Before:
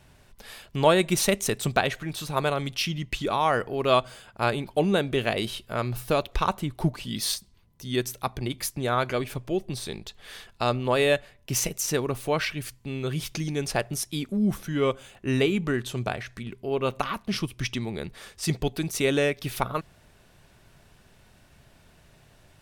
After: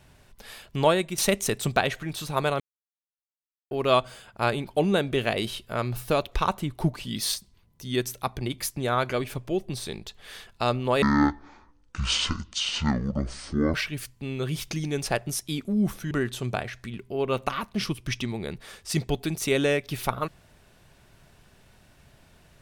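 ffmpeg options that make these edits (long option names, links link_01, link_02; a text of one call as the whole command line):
ffmpeg -i in.wav -filter_complex "[0:a]asplit=7[link_01][link_02][link_03][link_04][link_05][link_06][link_07];[link_01]atrim=end=1.18,asetpts=PTS-STARTPTS,afade=type=out:start_time=0.81:duration=0.37:silence=0.266073[link_08];[link_02]atrim=start=1.18:end=2.6,asetpts=PTS-STARTPTS,afade=type=in:duration=0.004:curve=hsin:silence=0.266073,afade=type=out:start_time=1.416:duration=0.004:curve=hsin[link_09];[link_03]atrim=start=2.6:end=3.71,asetpts=PTS-STARTPTS,volume=0[link_10];[link_04]atrim=start=3.71:end=11.024,asetpts=PTS-STARTPTS,afade=type=in:duration=0.004:curve=hsin[link_11];[link_05]atrim=start=11.02:end=12.38,asetpts=PTS-STARTPTS,asetrate=22050,aresample=44100[link_12];[link_06]atrim=start=12.376:end=14.752[link_13];[link_07]atrim=start=15.638[link_14];[link_08][link_09][link_10][link_11]concat=n=4:v=0:a=1[link_15];[link_15][link_12]acrossfade=duration=0.004:curve1=hsin:curve2=hsin[link_16];[link_16][link_13]acrossfade=duration=0.004:curve1=hsin:curve2=hsin[link_17];[link_17][link_14]acrossfade=duration=0.004:curve1=hsin:curve2=hsin" out.wav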